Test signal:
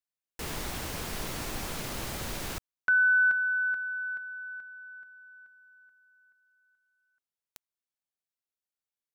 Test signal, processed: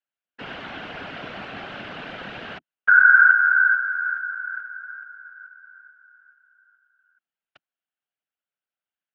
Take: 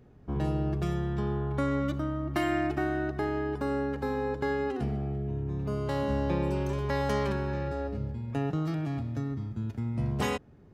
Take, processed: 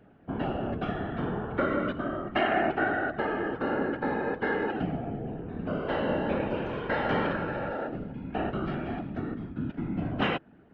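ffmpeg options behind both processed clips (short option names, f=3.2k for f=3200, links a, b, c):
-af "highpass=200,equalizer=f=220:t=q:w=4:g=7,equalizer=f=350:t=q:w=4:g=-4,equalizer=f=700:t=q:w=4:g=6,equalizer=f=1k:t=q:w=4:g=-3,equalizer=f=1.5k:t=q:w=4:g=9,equalizer=f=2.9k:t=q:w=4:g=6,lowpass=f=3.3k:w=0.5412,lowpass=f=3.3k:w=1.3066,afftfilt=real='hypot(re,im)*cos(2*PI*random(0))':imag='hypot(re,im)*sin(2*PI*random(1))':win_size=512:overlap=0.75,volume=7dB"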